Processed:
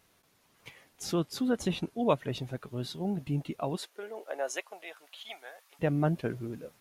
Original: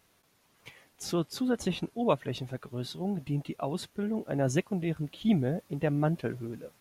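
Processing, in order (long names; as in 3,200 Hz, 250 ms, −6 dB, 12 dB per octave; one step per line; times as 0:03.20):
0:03.75–0:05.79: high-pass filter 390 Hz → 980 Hz 24 dB per octave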